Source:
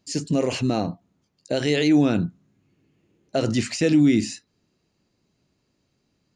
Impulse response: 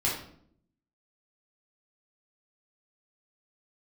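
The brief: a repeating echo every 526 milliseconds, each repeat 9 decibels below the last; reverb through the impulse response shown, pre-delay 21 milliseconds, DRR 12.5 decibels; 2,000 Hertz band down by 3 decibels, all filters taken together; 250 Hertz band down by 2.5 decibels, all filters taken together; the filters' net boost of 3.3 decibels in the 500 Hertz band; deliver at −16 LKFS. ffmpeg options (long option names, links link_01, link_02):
-filter_complex "[0:a]equalizer=frequency=250:width_type=o:gain=-5,equalizer=frequency=500:width_type=o:gain=5.5,equalizer=frequency=2000:width_type=o:gain=-4,aecho=1:1:526|1052|1578|2104:0.355|0.124|0.0435|0.0152,asplit=2[link_01][link_02];[1:a]atrim=start_sample=2205,adelay=21[link_03];[link_02][link_03]afir=irnorm=-1:irlink=0,volume=-21dB[link_04];[link_01][link_04]amix=inputs=2:normalize=0,volume=7dB"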